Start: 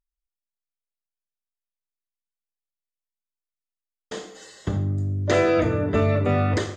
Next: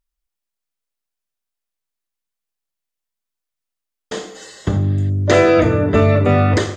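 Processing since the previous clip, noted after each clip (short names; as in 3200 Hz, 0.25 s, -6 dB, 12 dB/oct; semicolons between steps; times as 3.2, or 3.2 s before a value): spectral repair 4.85–5.07, 1500–4900 Hz before; gain +7.5 dB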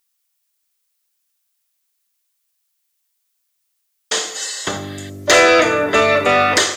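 RIAA curve recording; overdrive pedal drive 14 dB, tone 6100 Hz, clips at 0 dBFS; gain -1 dB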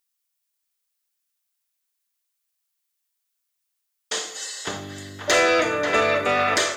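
narrowing echo 0.537 s, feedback 70%, band-pass 1300 Hz, level -5.5 dB; gain -7.5 dB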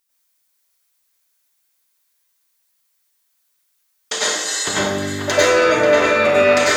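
compressor 6:1, threshold -25 dBFS, peak gain reduction 9.5 dB; plate-style reverb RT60 0.57 s, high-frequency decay 0.65×, pre-delay 85 ms, DRR -7 dB; gain +5 dB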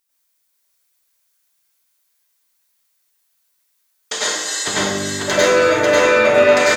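doubler 46 ms -11.5 dB; on a send: echo 0.545 s -4.5 dB; on the sum: gain -1 dB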